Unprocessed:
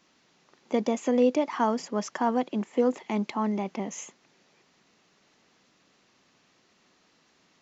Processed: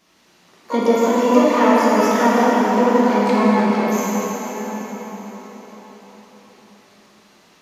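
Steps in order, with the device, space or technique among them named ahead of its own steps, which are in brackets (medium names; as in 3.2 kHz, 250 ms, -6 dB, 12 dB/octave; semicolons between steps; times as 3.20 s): shimmer-style reverb (harmony voices +12 st -8 dB; reverberation RT60 5.5 s, pre-delay 4 ms, DRR -8 dB); trim +3 dB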